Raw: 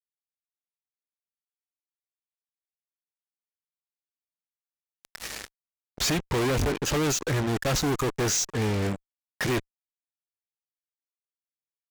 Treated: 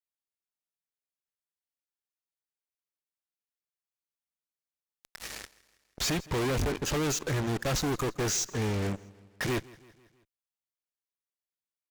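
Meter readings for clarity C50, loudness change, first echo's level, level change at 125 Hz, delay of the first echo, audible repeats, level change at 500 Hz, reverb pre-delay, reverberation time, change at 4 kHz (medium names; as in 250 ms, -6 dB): no reverb, -4.0 dB, -22.0 dB, -3.5 dB, 163 ms, 3, -4.0 dB, no reverb, no reverb, -4.0 dB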